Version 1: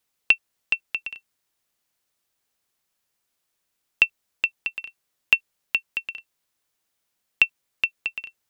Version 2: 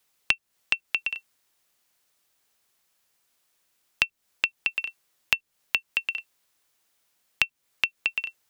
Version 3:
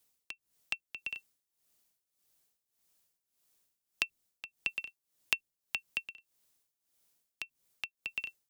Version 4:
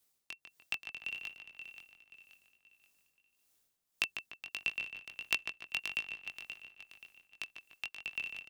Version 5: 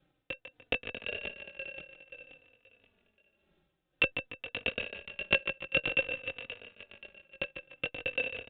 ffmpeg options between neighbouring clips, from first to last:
ffmpeg -i in.wav -filter_complex "[0:a]lowshelf=frequency=360:gain=-4.5,acrossover=split=310[link_01][link_02];[link_02]acompressor=threshold=-27dB:ratio=6[link_03];[link_01][link_03]amix=inputs=2:normalize=0,volume=6dB" out.wav
ffmpeg -i in.wav -filter_complex "[0:a]equalizer=frequency=1600:width_type=o:width=3:gain=-9,acrossover=split=510|6200[link_01][link_02][link_03];[link_01]aeval=exprs='(mod(56.2*val(0)+1,2)-1)/56.2':channel_layout=same[link_04];[link_04][link_02][link_03]amix=inputs=3:normalize=0,tremolo=f=1.7:d=0.83" out.wav
ffmpeg -i in.wav -filter_complex "[0:a]asplit=2[link_01][link_02];[link_02]aecho=0:1:529|1058|1587|2116:0.355|0.131|0.0486|0.018[link_03];[link_01][link_03]amix=inputs=2:normalize=0,flanger=delay=18.5:depth=4.3:speed=1.5,asplit=2[link_04][link_05];[link_05]adelay=148,lowpass=frequency=3000:poles=1,volume=-6.5dB,asplit=2[link_06][link_07];[link_07]adelay=148,lowpass=frequency=3000:poles=1,volume=0.48,asplit=2[link_08][link_09];[link_09]adelay=148,lowpass=frequency=3000:poles=1,volume=0.48,asplit=2[link_10][link_11];[link_11]adelay=148,lowpass=frequency=3000:poles=1,volume=0.48,asplit=2[link_12][link_13];[link_13]adelay=148,lowpass=frequency=3000:poles=1,volume=0.48,asplit=2[link_14][link_15];[link_15]adelay=148,lowpass=frequency=3000:poles=1,volume=0.48[link_16];[link_06][link_08][link_10][link_12][link_14][link_16]amix=inputs=6:normalize=0[link_17];[link_04][link_17]amix=inputs=2:normalize=0,volume=2.5dB" out.wav
ffmpeg -i in.wav -filter_complex "[0:a]asplit=2[link_01][link_02];[link_02]acrusher=samples=41:mix=1:aa=0.000001,volume=-4.5dB[link_03];[link_01][link_03]amix=inputs=2:normalize=0,aresample=8000,aresample=44100,asplit=2[link_04][link_05];[link_05]adelay=3.3,afreqshift=-0.53[link_06];[link_04][link_06]amix=inputs=2:normalize=1,volume=8dB" out.wav

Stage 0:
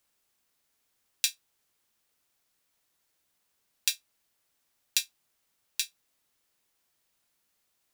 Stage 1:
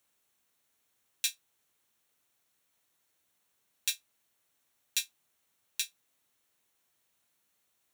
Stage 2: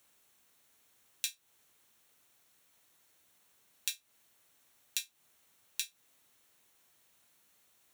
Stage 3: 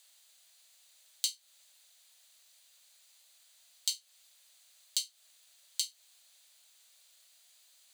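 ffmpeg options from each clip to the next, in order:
ffmpeg -i in.wav -af "alimiter=limit=-9.5dB:level=0:latency=1:release=16,highpass=61,bandreject=frequency=4900:width=6.9" out.wav
ffmpeg -i in.wav -af "acompressor=threshold=-39dB:ratio=10,volume=7dB" out.wav
ffmpeg -i in.wav -af "alimiter=limit=-13.5dB:level=0:latency=1:release=107,afreqshift=480,equalizer=frequency=250:width_type=o:width=1:gain=9,equalizer=frequency=1000:width_type=o:width=1:gain=-5,equalizer=frequency=4000:width_type=o:width=1:gain=10,equalizer=frequency=8000:width_type=o:width=1:gain=7" out.wav

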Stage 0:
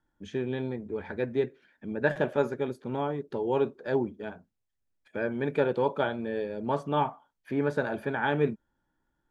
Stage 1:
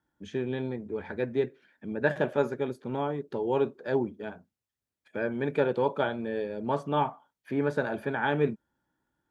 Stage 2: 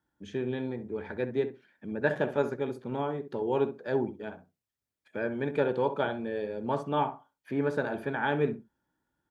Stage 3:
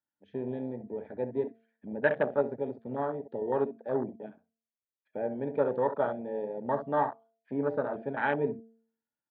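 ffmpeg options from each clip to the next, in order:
ffmpeg -i in.wav -af "highpass=71" out.wav
ffmpeg -i in.wav -filter_complex "[0:a]asplit=2[link_01][link_02];[link_02]adelay=65,lowpass=frequency=1400:poles=1,volume=-10dB,asplit=2[link_03][link_04];[link_04]adelay=65,lowpass=frequency=1400:poles=1,volume=0.17[link_05];[link_01][link_03][link_05]amix=inputs=3:normalize=0,volume=-1.5dB" out.wav
ffmpeg -i in.wav -af "afwtdn=0.0282,highpass=120,equalizer=frequency=160:width_type=q:width=4:gain=-6,equalizer=frequency=350:width_type=q:width=4:gain=-6,equalizer=frequency=620:width_type=q:width=4:gain=4,equalizer=frequency=1900:width_type=q:width=4:gain=4,lowpass=frequency=3800:width=0.5412,lowpass=frequency=3800:width=1.3066,bandreject=frequency=226:width_type=h:width=4,bandreject=frequency=452:width_type=h:width=4,bandreject=frequency=678:width_type=h:width=4" out.wav

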